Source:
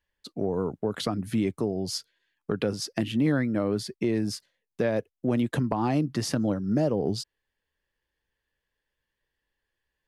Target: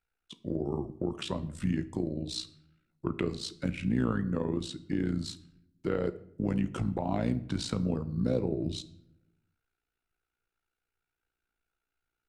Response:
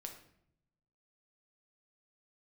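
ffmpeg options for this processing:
-filter_complex "[0:a]asetrate=36162,aresample=44100,tremolo=f=58:d=0.788,asplit=2[a][b];[1:a]atrim=start_sample=2205[c];[b][c]afir=irnorm=-1:irlink=0,volume=-0.5dB[d];[a][d]amix=inputs=2:normalize=0,volume=-5dB"

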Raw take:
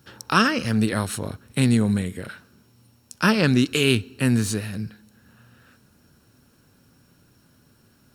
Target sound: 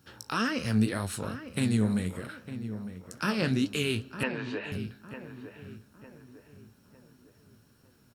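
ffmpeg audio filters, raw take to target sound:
-filter_complex "[0:a]alimiter=limit=-12dB:level=0:latency=1:release=281,flanger=delay=9.6:depth=9.7:regen=52:speed=1.9:shape=triangular,asettb=1/sr,asplit=3[a][b][c];[a]atrim=end=4.234[d];[b]atrim=start=4.23:end=4.72,asetpts=PTS-STARTPTS,afade=t=in:d=0.004:c=qsin,afade=t=out:st=0.486:d=0.004:c=qsin,highpass=f=340:w=0.5412,highpass=f=340:w=1.3066,equalizer=f=570:t=q:w=4:g=6,equalizer=f=940:t=q:w=4:g=9,equalizer=f=1.7k:t=q:w=4:g=4,equalizer=f=2.7k:t=q:w=4:g=6,lowpass=f=3.3k:w=0.5412,lowpass=f=3.3k:w=1.3066[e];[c]atrim=start=4.716[f];[d][e]acrossfade=d=0.004:c1=hsin:c2=qsin[g];[g][f]acrossfade=d=0.004:c1=qsin:c2=hsin,asplit=2[h][i];[i]adelay=905,lowpass=f=1.7k:p=1,volume=-11dB,asplit=2[j][k];[k]adelay=905,lowpass=f=1.7k:p=1,volume=0.43,asplit=2[l][m];[m]adelay=905,lowpass=f=1.7k:p=1,volume=0.43,asplit=2[n][o];[o]adelay=905,lowpass=f=1.7k:p=1,volume=0.43[p];[h][j][l][n][p]amix=inputs=5:normalize=0,volume=-1dB"

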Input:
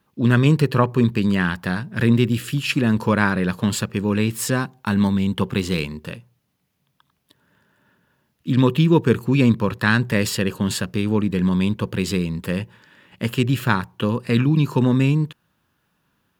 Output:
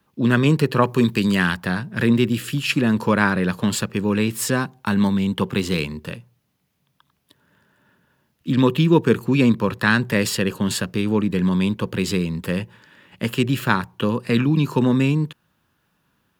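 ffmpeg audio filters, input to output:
-filter_complex "[0:a]asettb=1/sr,asplit=3[a][b][c];[a]atrim=end=0.824[d];[b]atrim=start=0.82:end=1.55,asetpts=PTS-STARTPTS,afade=t=in:d=0.004:c=qsin,afade=t=out:st=0.726:d=0.004:c=qsin,highshelf=f=3.3k:g=9[e];[c]atrim=start=1.546[f];[d][e]acrossfade=d=0.004:c1=hsin:c2=qsin[g];[g][f]acrossfade=d=0.004:c1=qsin:c2=hsin,acrossover=split=140|1100|3900[h][i][j][k];[h]acompressor=threshold=-33dB:ratio=6[l];[l][i][j][k]amix=inputs=4:normalize=0,volume=1dB"

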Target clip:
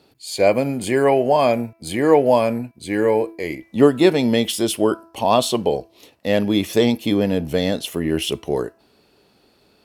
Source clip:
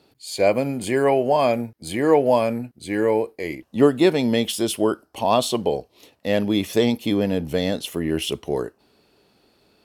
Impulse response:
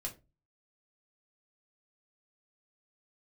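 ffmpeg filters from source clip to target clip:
-af "bandreject=f=331.7:t=h:w=4,bandreject=f=663.4:t=h:w=4,bandreject=f=995.1:t=h:w=4,bandreject=f=1.3268k:t=h:w=4,bandreject=f=1.6585k:t=h:w=4,bandreject=f=1.9902k:t=h:w=4,bandreject=f=2.3219k:t=h:w=4,bandreject=f=2.6536k:t=h:w=4,volume=2.5dB"

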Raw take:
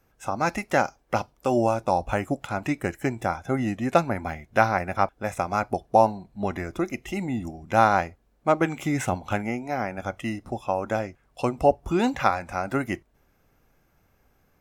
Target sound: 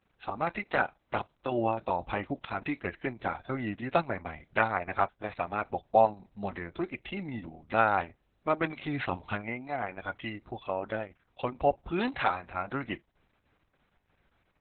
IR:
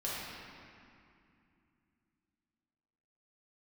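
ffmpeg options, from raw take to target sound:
-af "tiltshelf=f=1.3k:g=-3.5,volume=-3.5dB" -ar 48000 -c:a libopus -b:a 6k

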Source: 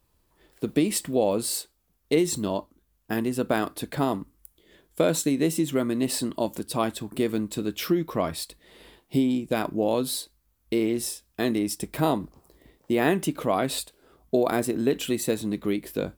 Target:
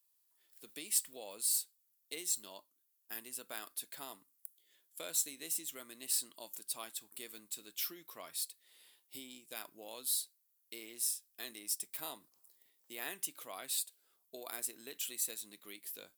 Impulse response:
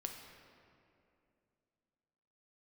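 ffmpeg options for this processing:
-af "aderivative,volume=-4dB"

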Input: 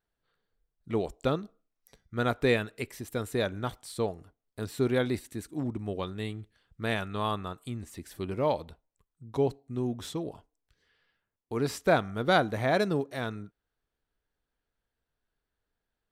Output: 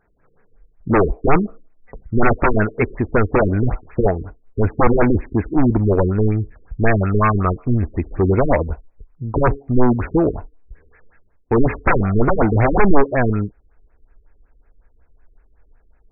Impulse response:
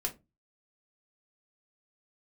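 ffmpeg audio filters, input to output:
-af "aeval=exprs='0.299*sin(PI/2*7.08*val(0)/0.299)':c=same,asubboost=boost=5.5:cutoff=57,afftfilt=real='re*lt(b*sr/1024,440*pow(2700/440,0.5+0.5*sin(2*PI*5.4*pts/sr)))':imag='im*lt(b*sr/1024,440*pow(2700/440,0.5+0.5*sin(2*PI*5.4*pts/sr)))':win_size=1024:overlap=0.75,volume=1.5dB"

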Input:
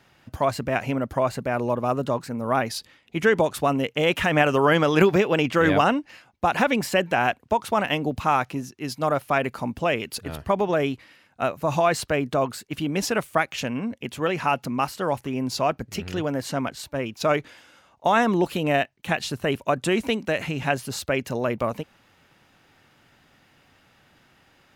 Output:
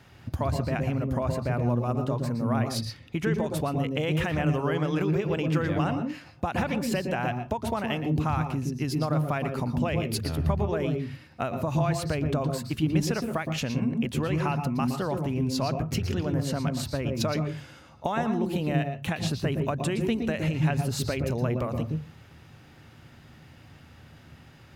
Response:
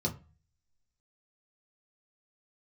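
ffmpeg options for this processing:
-filter_complex "[0:a]equalizer=f=79:t=o:w=2.1:g=10.5,acompressor=threshold=-29dB:ratio=6,asplit=2[a][b];[1:a]atrim=start_sample=2205,adelay=116[c];[b][c]afir=irnorm=-1:irlink=0,volume=-12.5dB[d];[a][d]amix=inputs=2:normalize=0,volume=2dB"

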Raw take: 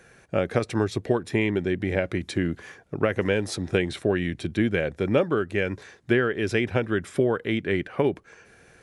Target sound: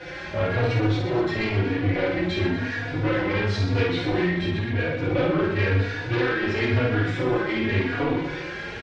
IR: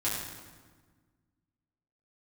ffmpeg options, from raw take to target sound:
-filter_complex "[0:a]aeval=exprs='val(0)+0.5*0.02*sgn(val(0))':c=same[a];[1:a]atrim=start_sample=2205,atrim=end_sample=3969[b];[a][b]afir=irnorm=-1:irlink=0,asettb=1/sr,asplit=3[c][d][e];[c]atrim=end=4.254[f];[d]atrim=start=4.25:end=5.1,asetpts=PTS-STARTPTS,afade=t=in:d=0.004:c=qsin,afade=t=out:st=0.846:d=0.004:c=qsin,acompressor=threshold=-18dB:ratio=4[g];[e]atrim=start=5.096[h];[f][g]acrossfade=d=0.004:c1=hsin:c2=qsin[i];[i][h]acrossfade=d=0.004:c1=qsin:c2=hsin,equalizer=f=2k:w=2:g=3.5,bandreject=f=1.2k:w=15,asoftclip=type=tanh:threshold=-18dB,lowpass=f=4.5k:w=0.5412,lowpass=f=4.5k:w=1.3066,aecho=1:1:50|125|237.5|406.2|659.4:0.631|0.398|0.251|0.158|0.1,asplit=2[j][k];[k]adelay=3.5,afreqshift=0.96[l];[j][l]amix=inputs=2:normalize=1"

